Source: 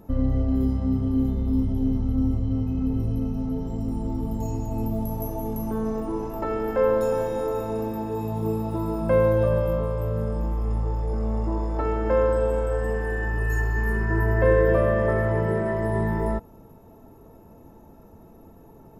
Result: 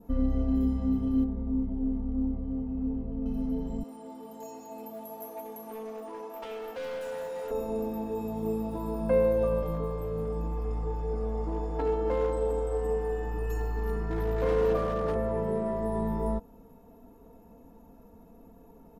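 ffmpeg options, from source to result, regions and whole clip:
-filter_complex "[0:a]asettb=1/sr,asplit=3[a][b][c];[a]atrim=end=1.244[d];[b]atrim=start=1.24:end=3.26,asetpts=PTS-STARTPTS,afade=t=in:d=0.004:c=qsin,afade=t=out:st=2.016:d=0.004:c=qsin,lowpass=1.2k,lowshelf=f=400:g=-4[e];[c]atrim=start=3.256[f];[d][e]acrossfade=d=0.004:c1=hsin:c2=qsin[g];[g][f]acrossfade=d=0.004:c1=qsin:c2=hsin,asettb=1/sr,asplit=3[h][i][j];[h]atrim=end=3.834[k];[i]atrim=start=3.83:end=7.51,asetpts=PTS-STARTPTS,afade=t=in:d=0.004:c=qsin,afade=t=out:st=3.676:d=0.004:c=qsin,highpass=540,volume=30dB,asoftclip=hard,volume=-30dB,aecho=1:1:174:0.211,atrim=end_sample=162288[l];[j]atrim=start=7.506[m];[k][l]acrossfade=d=0.004:c1=hsin:c2=qsin[n];[n][m]acrossfade=d=0.004:c1=qsin:c2=hsin,asettb=1/sr,asplit=3[o][p][q];[o]atrim=end=9.624[r];[p]atrim=start=9.62:end=15.16,asetpts=PTS-STARTPTS,afade=t=in:d=0.004:c=qsin,afade=t=out:st=5.536:d=0.004:c=qsin,equalizer=f=10k:w=6.9:g=-5.5,aecho=1:1:6.6:0.63,atrim=end_sample=244314,asoftclip=type=hard:threshold=-16.5dB[s];[q]atrim=start=15.156[t];[r][s]acrossfade=d=0.004:c1=hsin:c2=qsin[u];[u][t]acrossfade=d=0.004:c1=qsin:c2=hsin,adynamicequalizer=threshold=0.00501:dfrequency=2100:dqfactor=1.9:tfrequency=2100:tqfactor=1.9:attack=5:release=100:ratio=0.375:range=3:mode=cutabove:tftype=bell,aecho=1:1:4.2:0.72,volume=-6.5dB"

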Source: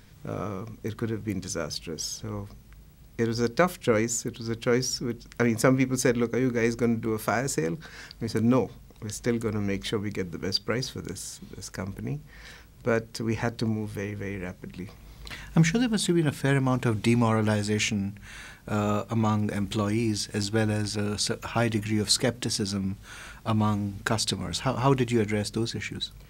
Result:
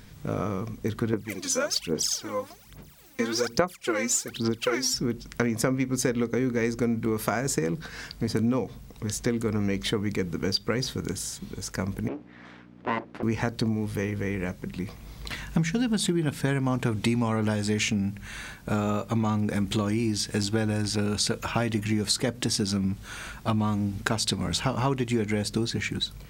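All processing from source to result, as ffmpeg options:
-filter_complex "[0:a]asettb=1/sr,asplit=3[a][b][c];[a]atrim=end=1.134[d];[b]atrim=start=1.13:end=4.94,asetpts=PTS-STARTPTS,afade=t=in:d=0.004:c=qsin,afade=t=out:st=3.806:d=0.004:c=qsin,highpass=f=490:p=1,aphaser=in_gain=1:out_gain=1:delay=3.9:decay=0.8:speed=1.2:type=sinusoidal[e];[c]atrim=start=4.936[f];[d][e]acrossfade=d=0.004:c1=hsin:c2=qsin[g];[g][f]acrossfade=d=0.004:c1=qsin:c2=hsin,asettb=1/sr,asplit=3[h][i][j];[h]atrim=end=12.084[k];[i]atrim=start=12.08:end=13.23,asetpts=PTS-STARTPTS,afade=t=in:d=0.004:c=qsin,afade=t=out:st=1.146:d=0.004:c=qsin,aeval=exprs='abs(val(0))':c=same,aeval=exprs='val(0)+0.00631*(sin(2*PI*60*n/s)+sin(2*PI*2*60*n/s)/2+sin(2*PI*3*60*n/s)/3+sin(2*PI*4*60*n/s)/4+sin(2*PI*5*60*n/s)/5)':c=same,highpass=240,lowpass=2.2k[l];[j]atrim=start=13.226[m];[k][l]acrossfade=d=0.004:c1=hsin:c2=qsin[n];[n][m]acrossfade=d=0.004:c1=qsin:c2=hsin,equalizer=f=220:t=o:w=0.77:g=2,acompressor=threshold=-26dB:ratio=6,volume=4dB"

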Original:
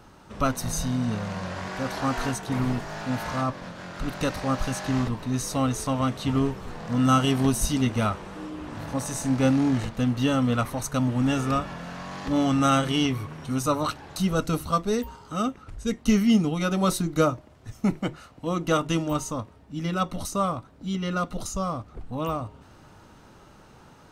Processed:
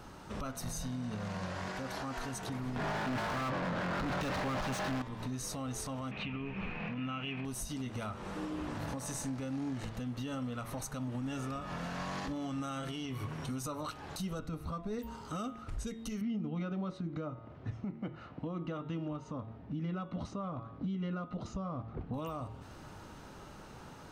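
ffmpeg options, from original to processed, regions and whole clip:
-filter_complex "[0:a]asettb=1/sr,asplit=3[a][b][c];[a]atrim=end=2.764[d];[b]atrim=start=2.76:end=5.02,asetpts=PTS-STARTPTS,afade=t=in:d=0.004:c=qsin,afade=t=out:st=2.256:d=0.004:c=qsin,bass=f=250:g=11,treble=f=4k:g=11,adynamicsmooth=sensitivity=6:basefreq=1.6k,asplit=2[e][f];[f]highpass=f=720:p=1,volume=44dB,asoftclip=type=tanh:threshold=-5dB[g];[e][g]amix=inputs=2:normalize=0,lowpass=f=1.9k:p=1,volume=-6dB[h];[c]atrim=start=5.016[i];[d][h]acrossfade=d=0.004:c1=hsin:c2=qsin[j];[j][i]acrossfade=d=0.004:c1=qsin:c2=hsin,asettb=1/sr,asplit=3[k][l][m];[k]atrim=end=6.114[n];[l]atrim=start=6.11:end=7.45,asetpts=PTS-STARTPTS,afade=t=in:d=0.004:c=qsin,afade=t=out:st=1.336:d=0.004:c=qsin,lowpass=f=2.5k:t=q:w=12,equalizer=f=190:t=o:w=0.31:g=11.5[o];[m]atrim=start=7.446[p];[n][o]acrossfade=d=0.004:c1=hsin:c2=qsin[q];[q][p]acrossfade=d=0.004:c1=qsin:c2=hsin,asettb=1/sr,asplit=3[r][s][t];[r]atrim=end=14.394[u];[s]atrim=start=14.39:end=14.99,asetpts=PTS-STARTPTS,afade=t=in:d=0.004:c=qsin,afade=t=out:st=0.596:d=0.004:c=qsin,bass=f=250:g=5,treble=f=4k:g=-11,bandreject=f=3k:w=11[v];[t]atrim=start=14.986[w];[u][v]acrossfade=d=0.004:c1=hsin:c2=qsin[x];[x][w]acrossfade=d=0.004:c1=qsin:c2=hsin,asettb=1/sr,asplit=3[y][z][aa];[y]atrim=end=16.214[ab];[z]atrim=start=16.21:end=22.14,asetpts=PTS-STARTPTS,afade=t=in:d=0.004:c=qsin,afade=t=out:st=5.926:d=0.004:c=qsin,highpass=150,lowpass=3.6k,aemphasis=mode=reproduction:type=bsi[ac];[aa]atrim=start=22.136[ad];[ab][ac]acrossfade=d=0.004:c1=hsin:c2=qsin[ae];[ae][ad]acrossfade=d=0.004:c1=qsin:c2=hsin,bandreject=f=113.2:t=h:w=4,bandreject=f=226.4:t=h:w=4,bandreject=f=339.6:t=h:w=4,bandreject=f=452.8:t=h:w=4,bandreject=f=566:t=h:w=4,bandreject=f=679.2:t=h:w=4,bandreject=f=792.4:t=h:w=4,bandreject=f=905.6:t=h:w=4,bandreject=f=1.0188k:t=h:w=4,bandreject=f=1.132k:t=h:w=4,bandreject=f=1.2452k:t=h:w=4,bandreject=f=1.3584k:t=h:w=4,bandreject=f=1.4716k:t=h:w=4,bandreject=f=1.5848k:t=h:w=4,bandreject=f=1.698k:t=h:w=4,bandreject=f=1.8112k:t=h:w=4,bandreject=f=1.9244k:t=h:w=4,bandreject=f=2.0376k:t=h:w=4,bandreject=f=2.1508k:t=h:w=4,bandreject=f=2.264k:t=h:w=4,bandreject=f=2.3772k:t=h:w=4,bandreject=f=2.4904k:t=h:w=4,bandreject=f=2.6036k:t=h:w=4,bandreject=f=2.7168k:t=h:w=4,bandreject=f=2.83k:t=h:w=4,bandreject=f=2.9432k:t=h:w=4,bandreject=f=3.0564k:t=h:w=4,bandreject=f=3.1696k:t=h:w=4,bandreject=f=3.2828k:t=h:w=4,bandreject=f=3.396k:t=h:w=4,bandreject=f=3.5092k:t=h:w=4,bandreject=f=3.6224k:t=h:w=4,bandreject=f=3.7356k:t=h:w=4,bandreject=f=3.8488k:t=h:w=4,acompressor=threshold=-27dB:ratio=6,alimiter=level_in=7dB:limit=-24dB:level=0:latency=1:release=297,volume=-7dB,volume=1dB"

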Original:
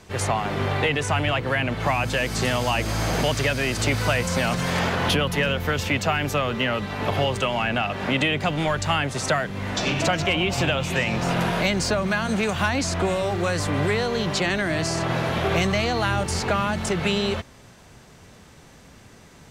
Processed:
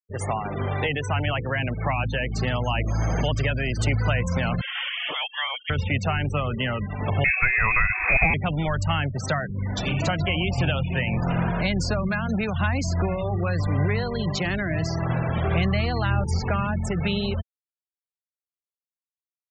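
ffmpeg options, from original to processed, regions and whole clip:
-filter_complex "[0:a]asettb=1/sr,asplit=3[a][b][c];[a]atrim=end=4.614[d];[b]atrim=start=4.61:end=5.7,asetpts=PTS-STARTPTS,afade=t=in:d=0.004:c=qsin,afade=t=out:st=1.086:d=0.004:c=qsin,highpass=460,lowpass=f=3.1k:t=q:w=0.5098,lowpass=f=3.1k:t=q:w=0.6013,lowpass=f=3.1k:t=q:w=0.9,lowpass=f=3.1k:t=q:w=2.563,afreqshift=-3700[e];[c]atrim=start=5.696[f];[d][e]acrossfade=d=0.004:c1=hsin:c2=qsin[g];[g][f]acrossfade=d=0.004:c1=qsin:c2=hsin,asettb=1/sr,asplit=3[h][i][j];[h]atrim=end=7.244[k];[i]atrim=start=7.24:end=8.34,asetpts=PTS-STARTPTS,afade=t=in:d=0.004:c=qsin,afade=t=out:st=1.096:d=0.004:c=qsin,lowpass=f=2.3k:t=q:w=0.5098,lowpass=f=2.3k:t=q:w=0.6013,lowpass=f=2.3k:t=q:w=0.9,lowpass=f=2.3k:t=q:w=2.563,afreqshift=-2700,acontrast=56,lowshelf=f=76:g=8[l];[j]atrim=start=8.336[m];[k][l]acrossfade=d=0.004:c1=hsin:c2=qsin[n];[n][m]acrossfade=d=0.004:c1=qsin:c2=hsin,afftfilt=real='re*gte(hypot(re,im),0.0631)':imag='im*gte(hypot(re,im),0.0631)':win_size=1024:overlap=0.75,asubboost=boost=2.5:cutoff=180,volume=-3dB"

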